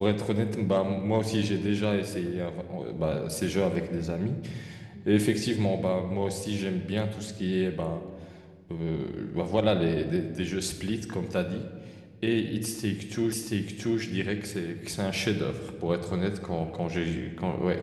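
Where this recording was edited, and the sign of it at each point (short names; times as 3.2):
13.32 repeat of the last 0.68 s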